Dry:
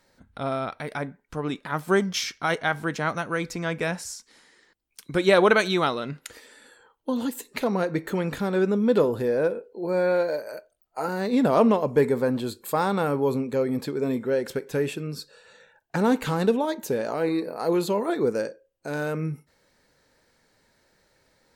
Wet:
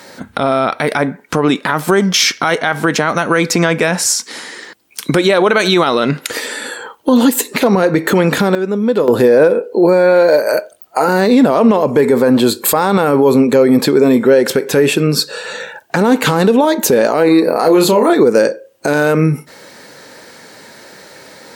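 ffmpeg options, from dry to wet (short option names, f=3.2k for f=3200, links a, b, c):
-filter_complex "[0:a]asettb=1/sr,asplit=3[a][b][c];[a]atrim=end=17.544[d];[b]atrim=start=17.54:end=18.13,asetpts=PTS-STARTPTS,afade=t=in:d=0.004:c=qsin,afade=t=out:st=0.586:d=0.004:c=qsin,asplit=2[e][f];[f]adelay=32,volume=-6dB[g];[e][g]amix=inputs=2:normalize=0,atrim=end_sample=26019[h];[c]atrim=start=18.126[i];[d][h]acrossfade=d=0.004:c1=hsin:c2=qsin[j];[j][i]acrossfade=d=0.004:c1=qsin:c2=hsin,asplit=3[k][l][m];[k]atrim=end=8.55,asetpts=PTS-STARTPTS,afade=t=out:st=8.35:d=0.2:c=log:silence=0.141254[n];[l]atrim=start=8.55:end=9.08,asetpts=PTS-STARTPTS,volume=-17dB[o];[m]atrim=start=9.08,asetpts=PTS-STARTPTS,afade=t=in:d=0.2:c=log:silence=0.141254[p];[n][o][p]concat=n=3:v=0:a=1,highpass=180,acompressor=threshold=-40dB:ratio=2,alimiter=level_in=28.5dB:limit=-1dB:release=50:level=0:latency=1,volume=-1dB"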